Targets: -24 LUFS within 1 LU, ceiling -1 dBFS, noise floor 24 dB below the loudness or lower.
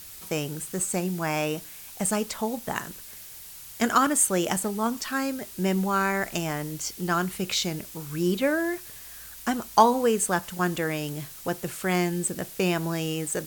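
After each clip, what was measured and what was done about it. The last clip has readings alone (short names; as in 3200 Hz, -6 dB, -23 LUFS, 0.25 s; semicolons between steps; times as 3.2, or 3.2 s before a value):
noise floor -44 dBFS; noise floor target -51 dBFS; loudness -26.5 LUFS; peak -5.0 dBFS; loudness target -24.0 LUFS
-> denoiser 7 dB, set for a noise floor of -44 dBFS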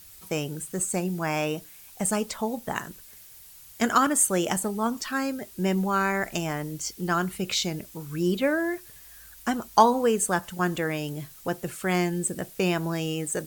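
noise floor -49 dBFS; noise floor target -51 dBFS
-> denoiser 6 dB, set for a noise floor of -49 dBFS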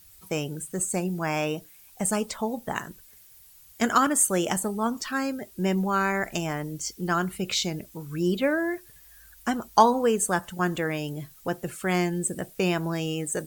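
noise floor -53 dBFS; loudness -27.0 LUFS; peak -5.0 dBFS; loudness target -24.0 LUFS
-> gain +3 dB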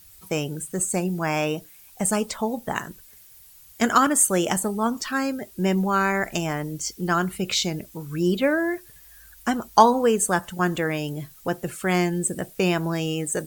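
loudness -24.0 LUFS; peak -2.0 dBFS; noise floor -50 dBFS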